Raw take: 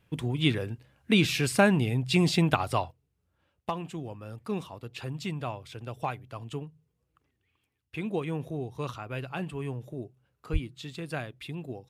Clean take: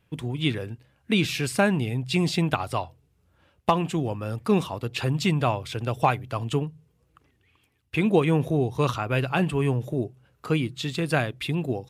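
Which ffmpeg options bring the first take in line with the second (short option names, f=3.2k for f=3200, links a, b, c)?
-filter_complex "[0:a]asplit=3[a][b][c];[a]afade=t=out:st=10.52:d=0.02[d];[b]highpass=f=140:w=0.5412,highpass=f=140:w=1.3066,afade=t=in:st=10.52:d=0.02,afade=t=out:st=10.64:d=0.02[e];[c]afade=t=in:st=10.64:d=0.02[f];[d][e][f]amix=inputs=3:normalize=0,asetnsamples=n=441:p=0,asendcmd='2.91 volume volume 11dB',volume=0dB"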